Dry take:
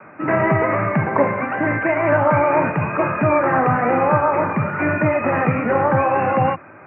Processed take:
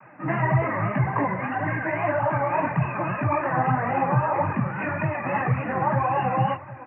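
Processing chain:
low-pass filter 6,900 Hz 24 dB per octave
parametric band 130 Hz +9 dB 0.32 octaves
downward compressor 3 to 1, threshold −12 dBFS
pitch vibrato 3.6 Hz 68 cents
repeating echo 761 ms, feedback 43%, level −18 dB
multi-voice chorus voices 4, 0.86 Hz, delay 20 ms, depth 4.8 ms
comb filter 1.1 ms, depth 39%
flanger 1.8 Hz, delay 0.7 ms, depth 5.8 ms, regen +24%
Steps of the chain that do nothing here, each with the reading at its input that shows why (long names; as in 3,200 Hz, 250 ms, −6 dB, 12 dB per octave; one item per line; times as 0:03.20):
low-pass filter 6,900 Hz: nothing at its input above 2,600 Hz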